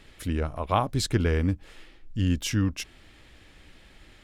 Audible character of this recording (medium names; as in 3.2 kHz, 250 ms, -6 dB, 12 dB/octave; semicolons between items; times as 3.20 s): noise floor -54 dBFS; spectral tilt -5.5 dB/octave